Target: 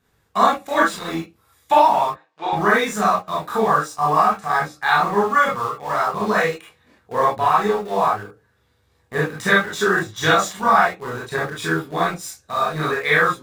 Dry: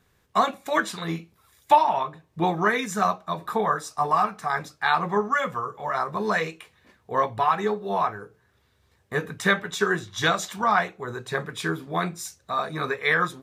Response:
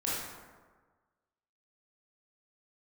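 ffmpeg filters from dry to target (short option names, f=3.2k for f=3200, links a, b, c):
-filter_complex "[0:a]asplit=2[a][b];[b]aeval=exprs='val(0)*gte(abs(val(0)),0.0299)':c=same,volume=-4dB[c];[a][c]amix=inputs=2:normalize=0,asettb=1/sr,asplit=3[d][e][f];[d]atrim=end=2.094[g];[e]atrim=start=2.09:end=2.53,asetpts=PTS-STARTPTS,afade=t=in:d=0.004:c=qsin,afade=t=out:st=0.436:d=0.004:c=qsin,highpass=730,lowpass=4.4k[h];[f]atrim=start=2.526[i];[g][h]acrossfade=d=0.004:c1=hsin:c2=qsin[j];[j][i]acrossfade=d=0.004:c1=qsin:c2=hsin[k];[1:a]atrim=start_sample=2205,atrim=end_sample=3528[l];[k][l]afir=irnorm=-1:irlink=0,volume=-2.5dB"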